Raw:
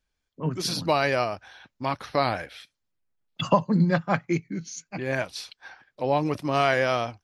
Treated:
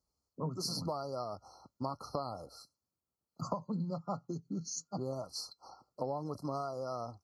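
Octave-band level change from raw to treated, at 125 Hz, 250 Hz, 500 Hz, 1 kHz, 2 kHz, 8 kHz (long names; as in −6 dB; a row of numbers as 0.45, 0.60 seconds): −12.5 dB, −13.0 dB, −13.5 dB, −14.0 dB, below −35 dB, −5.0 dB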